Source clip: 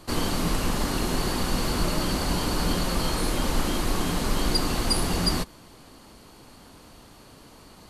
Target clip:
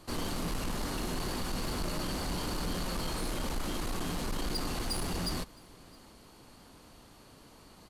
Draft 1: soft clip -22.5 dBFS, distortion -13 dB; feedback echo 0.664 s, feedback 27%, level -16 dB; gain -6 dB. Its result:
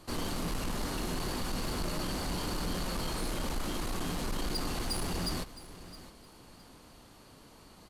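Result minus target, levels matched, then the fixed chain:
echo-to-direct +10.5 dB
soft clip -22.5 dBFS, distortion -13 dB; feedback echo 0.664 s, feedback 27%, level -26.5 dB; gain -6 dB

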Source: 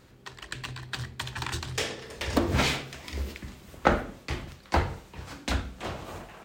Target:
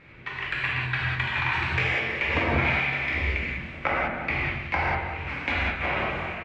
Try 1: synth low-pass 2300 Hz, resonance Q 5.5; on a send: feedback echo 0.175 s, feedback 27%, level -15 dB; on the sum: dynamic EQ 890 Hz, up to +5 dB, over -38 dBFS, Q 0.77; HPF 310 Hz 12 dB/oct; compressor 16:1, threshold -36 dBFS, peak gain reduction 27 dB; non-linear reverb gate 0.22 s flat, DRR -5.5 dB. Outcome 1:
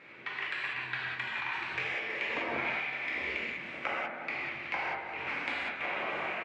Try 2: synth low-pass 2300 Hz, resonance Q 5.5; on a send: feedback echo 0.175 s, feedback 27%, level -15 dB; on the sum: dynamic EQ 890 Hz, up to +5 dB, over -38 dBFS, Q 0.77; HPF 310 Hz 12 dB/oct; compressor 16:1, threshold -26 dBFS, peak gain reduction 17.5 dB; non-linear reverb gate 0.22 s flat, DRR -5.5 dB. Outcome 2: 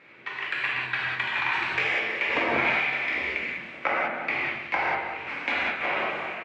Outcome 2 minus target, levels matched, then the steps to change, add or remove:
250 Hz band -3.5 dB
remove: HPF 310 Hz 12 dB/oct

